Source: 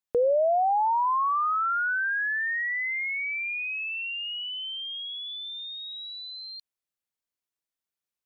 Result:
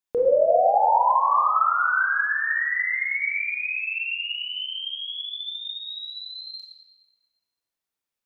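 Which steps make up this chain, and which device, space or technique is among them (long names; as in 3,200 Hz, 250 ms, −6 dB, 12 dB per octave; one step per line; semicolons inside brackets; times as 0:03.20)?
stairwell (convolution reverb RT60 2.0 s, pre-delay 21 ms, DRR −2 dB)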